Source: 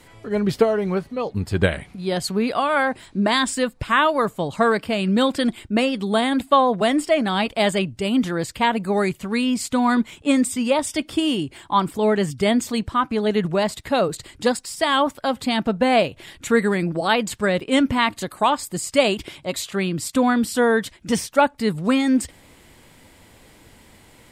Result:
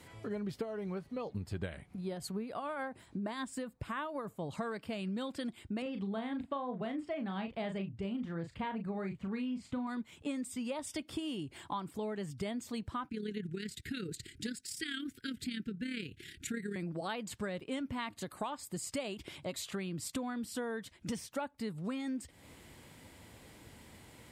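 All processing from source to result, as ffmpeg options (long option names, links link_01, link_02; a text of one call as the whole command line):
ffmpeg -i in.wav -filter_complex "[0:a]asettb=1/sr,asplit=3[link_01][link_02][link_03];[link_01]atrim=end=1.814[link_04];[link_02]atrim=start=1.81:end=4.48,asetpts=PTS-STARTPTS,afade=type=in:duration=0.004:curve=qsin,afade=type=out:start_time=2.666:duration=0.004:curve=qsin,equalizer=frequency=4000:width=0.5:gain=-6.5,tremolo=f=6.8:d=0.48[link_05];[link_03]atrim=start=4.476[link_06];[link_04][link_05]acrossfade=duration=0.004:curve1=hsin:curve2=qsin[link_07];[link_07][link_06]acrossfade=duration=0.004:curve1=qsin:curve2=hsin,asettb=1/sr,asplit=3[link_08][link_09][link_10];[link_08]atrim=end=5.824[link_11];[link_09]atrim=start=5.82:end=9.87,asetpts=PTS-STARTPTS,afade=type=in:duration=0.004:curve=qsin,afade=type=out:start_time=4.046:duration=0.004:curve=qsin,lowpass=9200,bass=frequency=250:gain=5,treble=frequency=4000:gain=-14,asplit=2[link_12][link_13];[link_13]adelay=36,volume=-7dB[link_14];[link_12][link_14]amix=inputs=2:normalize=0,atrim=end_sample=178605[link_15];[link_10]atrim=start=9.866[link_16];[link_11][link_15]acrossfade=duration=0.004:curve1=hsin:curve2=qsin[link_17];[link_17][link_16]acrossfade=duration=0.004:curve1=qsin:curve2=hsin,asettb=1/sr,asplit=3[link_18][link_19][link_20];[link_18]atrim=end=13.094[link_21];[link_19]atrim=start=13.09:end=16.76,asetpts=PTS-STARTPTS,afade=type=in:duration=0.004:curve=qsin,afade=type=out:start_time=3.666:duration=0.004:curve=qsin,asuperstop=centerf=790:order=12:qfactor=0.77,tremolo=f=35:d=0.571[link_22];[link_20]atrim=start=16.756[link_23];[link_21][link_22]acrossfade=duration=0.004:curve1=hsin:curve2=qsin[link_24];[link_24][link_23]acrossfade=duration=0.004:curve1=qsin:curve2=hsin,highpass=65,lowshelf=frequency=170:gain=5,acompressor=threshold=-30dB:ratio=6,volume=-6.5dB" out.wav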